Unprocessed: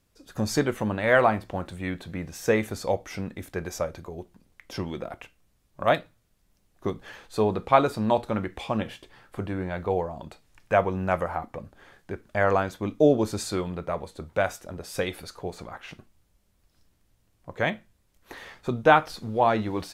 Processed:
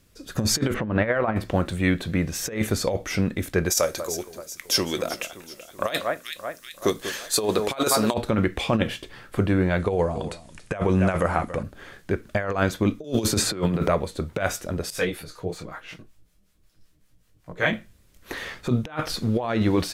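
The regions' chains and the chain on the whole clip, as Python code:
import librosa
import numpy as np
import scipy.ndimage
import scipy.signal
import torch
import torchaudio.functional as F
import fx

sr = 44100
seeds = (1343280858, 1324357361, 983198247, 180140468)

y = fx.chain(x, sr, fx.law_mismatch(coded='mu'),
    fx.lowpass(hz=2000.0, slope=12),
    fx.over_compress(threshold_db=-23.0, ratio=-0.5), at=(0.74, 1.36))
y = fx.chain(y, sr, fx.bass_treble(bass_db=-12, treble_db=15),
    fx.echo_alternate(ms=191, hz=1900.0, feedback_pct=70, wet_db=-12.0), at=(3.7, 8.14))
y = fx.chain(y, sr, fx.high_shelf(hz=6200.0, db=7.0),
    fx.resample_bad(factor=2, down='none', up='filtered'),
    fx.echo_single(ms=280, db=-17.5), at=(9.79, 11.63))
y = fx.chain(y, sr, fx.high_shelf(hz=10000.0, db=3.5),
    fx.band_squash(depth_pct=100), at=(13.04, 13.88))
y = fx.chain(y, sr, fx.comb(ms=6.4, depth=0.31),
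    fx.harmonic_tremolo(hz=5.3, depth_pct=70, crossover_hz=650.0),
    fx.detune_double(cents=28), at=(14.9, 17.73))
y = fx.peak_eq(y, sr, hz=840.0, db=-6.5, octaves=0.74)
y = fx.over_compress(y, sr, threshold_db=-28.0, ratio=-0.5)
y = y * 10.0 ** (7.0 / 20.0)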